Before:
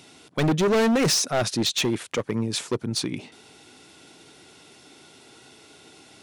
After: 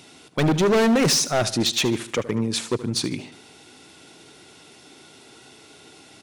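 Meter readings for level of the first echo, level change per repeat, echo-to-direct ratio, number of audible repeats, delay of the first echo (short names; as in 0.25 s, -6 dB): -15.5 dB, -6.5 dB, -14.5 dB, 3, 75 ms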